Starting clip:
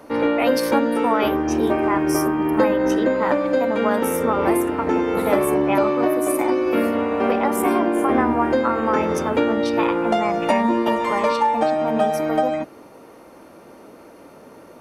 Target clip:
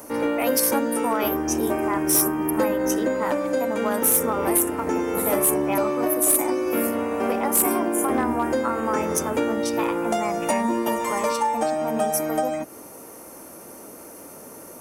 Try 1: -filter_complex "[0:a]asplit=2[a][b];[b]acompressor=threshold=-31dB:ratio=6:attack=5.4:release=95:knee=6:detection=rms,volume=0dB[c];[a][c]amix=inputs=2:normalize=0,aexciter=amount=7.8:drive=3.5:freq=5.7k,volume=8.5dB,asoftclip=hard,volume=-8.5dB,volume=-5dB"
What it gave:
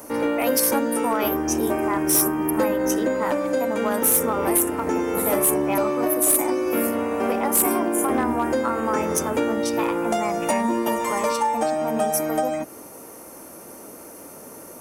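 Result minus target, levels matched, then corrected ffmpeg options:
compressor: peak gain reduction -6 dB
-filter_complex "[0:a]asplit=2[a][b];[b]acompressor=threshold=-38.5dB:ratio=6:attack=5.4:release=95:knee=6:detection=rms,volume=0dB[c];[a][c]amix=inputs=2:normalize=0,aexciter=amount=7.8:drive=3.5:freq=5.7k,volume=8.5dB,asoftclip=hard,volume=-8.5dB,volume=-5dB"

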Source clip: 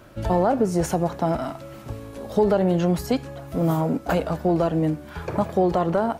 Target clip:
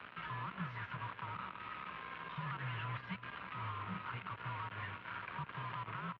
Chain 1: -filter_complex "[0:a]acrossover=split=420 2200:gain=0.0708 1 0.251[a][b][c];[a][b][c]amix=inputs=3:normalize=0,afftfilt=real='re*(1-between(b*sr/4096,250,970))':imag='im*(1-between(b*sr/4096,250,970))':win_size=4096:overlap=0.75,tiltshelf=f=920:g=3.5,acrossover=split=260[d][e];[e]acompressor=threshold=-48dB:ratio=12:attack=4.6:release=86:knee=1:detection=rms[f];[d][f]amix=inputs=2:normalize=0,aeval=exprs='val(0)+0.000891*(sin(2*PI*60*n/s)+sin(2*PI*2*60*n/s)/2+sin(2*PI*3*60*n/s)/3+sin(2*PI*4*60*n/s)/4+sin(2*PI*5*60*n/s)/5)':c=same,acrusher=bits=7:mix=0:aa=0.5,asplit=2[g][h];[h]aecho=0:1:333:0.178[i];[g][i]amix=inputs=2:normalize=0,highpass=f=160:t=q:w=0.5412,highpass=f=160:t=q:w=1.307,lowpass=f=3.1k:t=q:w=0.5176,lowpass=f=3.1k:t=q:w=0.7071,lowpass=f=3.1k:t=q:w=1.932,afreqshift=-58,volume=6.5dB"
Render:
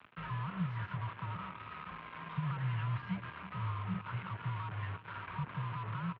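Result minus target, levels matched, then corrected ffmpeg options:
1000 Hz band -3.5 dB
-filter_complex "[0:a]acrossover=split=420 2200:gain=0.0708 1 0.251[a][b][c];[a][b][c]amix=inputs=3:normalize=0,afftfilt=real='re*(1-between(b*sr/4096,250,970))':imag='im*(1-between(b*sr/4096,250,970))':win_size=4096:overlap=0.75,tiltshelf=f=920:g=-6,acrossover=split=260[d][e];[e]acompressor=threshold=-48dB:ratio=12:attack=4.6:release=86:knee=1:detection=rms[f];[d][f]amix=inputs=2:normalize=0,aeval=exprs='val(0)+0.000891*(sin(2*PI*60*n/s)+sin(2*PI*2*60*n/s)/2+sin(2*PI*3*60*n/s)/3+sin(2*PI*4*60*n/s)/4+sin(2*PI*5*60*n/s)/5)':c=same,acrusher=bits=7:mix=0:aa=0.5,asplit=2[g][h];[h]aecho=0:1:333:0.178[i];[g][i]amix=inputs=2:normalize=0,highpass=f=160:t=q:w=0.5412,highpass=f=160:t=q:w=1.307,lowpass=f=3.1k:t=q:w=0.5176,lowpass=f=3.1k:t=q:w=0.7071,lowpass=f=3.1k:t=q:w=1.932,afreqshift=-58,volume=6.5dB"

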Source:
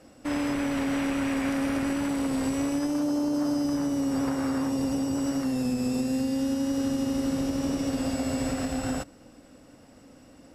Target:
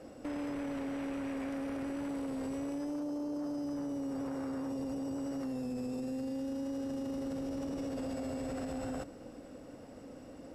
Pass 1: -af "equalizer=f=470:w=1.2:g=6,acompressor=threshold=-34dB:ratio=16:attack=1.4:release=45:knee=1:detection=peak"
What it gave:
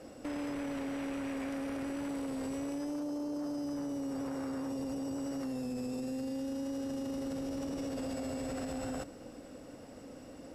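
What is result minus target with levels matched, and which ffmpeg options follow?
4000 Hz band +3.5 dB
-af "equalizer=f=470:w=1.2:g=6,acompressor=threshold=-34dB:ratio=16:attack=1.4:release=45:knee=1:detection=peak,highshelf=f=2.2k:g=-5"

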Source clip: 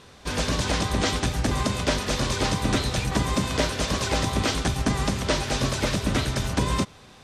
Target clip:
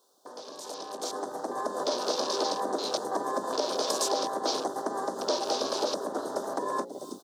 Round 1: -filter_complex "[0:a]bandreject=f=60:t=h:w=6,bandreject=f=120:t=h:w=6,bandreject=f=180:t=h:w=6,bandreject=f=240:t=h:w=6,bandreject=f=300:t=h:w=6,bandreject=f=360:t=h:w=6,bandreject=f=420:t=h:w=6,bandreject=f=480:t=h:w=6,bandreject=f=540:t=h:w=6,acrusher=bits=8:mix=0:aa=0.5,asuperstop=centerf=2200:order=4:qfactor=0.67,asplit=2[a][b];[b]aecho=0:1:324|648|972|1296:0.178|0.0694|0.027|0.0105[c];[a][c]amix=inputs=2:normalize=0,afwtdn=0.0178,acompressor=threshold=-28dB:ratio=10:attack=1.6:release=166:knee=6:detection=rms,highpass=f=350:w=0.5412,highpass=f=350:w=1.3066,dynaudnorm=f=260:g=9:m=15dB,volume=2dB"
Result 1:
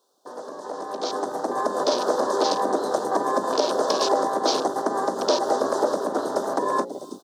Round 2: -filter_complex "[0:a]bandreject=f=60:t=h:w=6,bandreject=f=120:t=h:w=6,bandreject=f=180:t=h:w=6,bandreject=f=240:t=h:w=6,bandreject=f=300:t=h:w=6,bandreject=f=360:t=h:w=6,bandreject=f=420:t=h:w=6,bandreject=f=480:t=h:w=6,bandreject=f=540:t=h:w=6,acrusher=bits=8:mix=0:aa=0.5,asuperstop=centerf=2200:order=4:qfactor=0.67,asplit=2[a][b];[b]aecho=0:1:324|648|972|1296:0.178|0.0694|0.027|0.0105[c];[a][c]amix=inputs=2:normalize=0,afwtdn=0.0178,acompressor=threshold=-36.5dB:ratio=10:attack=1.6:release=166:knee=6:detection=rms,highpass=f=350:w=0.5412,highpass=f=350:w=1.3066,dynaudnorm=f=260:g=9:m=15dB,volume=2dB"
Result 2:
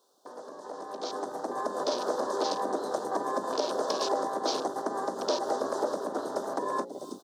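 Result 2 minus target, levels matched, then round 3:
8000 Hz band -5.5 dB
-filter_complex "[0:a]bandreject=f=60:t=h:w=6,bandreject=f=120:t=h:w=6,bandreject=f=180:t=h:w=6,bandreject=f=240:t=h:w=6,bandreject=f=300:t=h:w=6,bandreject=f=360:t=h:w=6,bandreject=f=420:t=h:w=6,bandreject=f=480:t=h:w=6,bandreject=f=540:t=h:w=6,acrusher=bits=8:mix=0:aa=0.5,asuperstop=centerf=2200:order=4:qfactor=0.67,highshelf=f=6.5k:g=5.5,asplit=2[a][b];[b]aecho=0:1:324|648|972|1296:0.178|0.0694|0.027|0.0105[c];[a][c]amix=inputs=2:normalize=0,afwtdn=0.0178,acompressor=threshold=-36.5dB:ratio=10:attack=1.6:release=166:knee=6:detection=rms,highpass=f=350:w=0.5412,highpass=f=350:w=1.3066,dynaudnorm=f=260:g=9:m=15dB,volume=2dB"

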